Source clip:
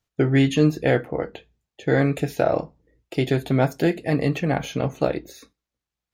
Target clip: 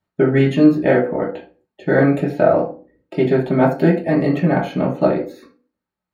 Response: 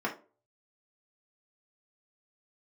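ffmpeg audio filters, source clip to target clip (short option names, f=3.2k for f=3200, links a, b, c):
-filter_complex "[0:a]asettb=1/sr,asplit=3[a][b][c];[a]atrim=end=2.244[d];[b]atrim=start=2.24:end=3.58,asetpts=PTS-STARTPTS,afade=t=in:d=0.004:c=qsin,afade=t=out:st=1.336:d=0.004:c=qsin,highshelf=f=8.8k:g=-9[e];[c]atrim=start=3.576[f];[d][e]acrossfade=d=0.004:c1=hsin:c2=qsin[g];[g][f]acrossfade=d=0.004:c1=qsin:c2=hsin[h];[1:a]atrim=start_sample=2205,afade=t=out:st=0.29:d=0.01,atrim=end_sample=13230,asetrate=36603,aresample=44100[i];[h][i]afir=irnorm=-1:irlink=0,volume=-3.5dB"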